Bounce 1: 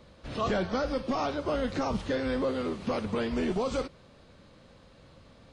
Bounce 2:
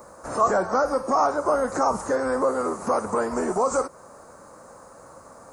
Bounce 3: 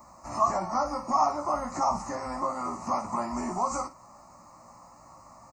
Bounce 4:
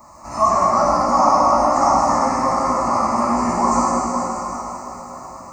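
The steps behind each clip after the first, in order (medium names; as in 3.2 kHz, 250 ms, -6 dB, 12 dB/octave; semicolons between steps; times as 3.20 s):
FFT filter 160 Hz 0 dB, 900 Hz +11 dB, 1.3 kHz +9 dB, 3.3 kHz -25 dB, 7 kHz +8 dB; in parallel at 0 dB: compression, threshold -31 dBFS, peak gain reduction 13.5 dB; on the sum: tilt EQ +2.5 dB/octave
static phaser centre 2.3 kHz, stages 8; on a send: early reflections 17 ms -4.5 dB, 58 ms -11 dB; on the sum: trim -3 dB
plate-style reverb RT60 4.5 s, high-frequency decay 0.9×, DRR -7 dB; trim +5 dB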